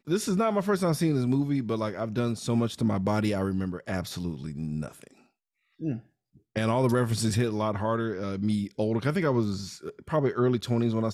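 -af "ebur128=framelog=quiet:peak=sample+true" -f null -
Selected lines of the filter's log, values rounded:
Integrated loudness:
  I:         -27.9 LUFS
  Threshold: -38.4 LUFS
Loudness range:
  LRA:         5.4 LU
  Threshold: -49.0 LUFS
  LRA low:   -32.6 LUFS
  LRA high:  -27.1 LUFS
Sample peak:
  Peak:      -15.3 dBFS
True peak:
  Peak:      -15.1 dBFS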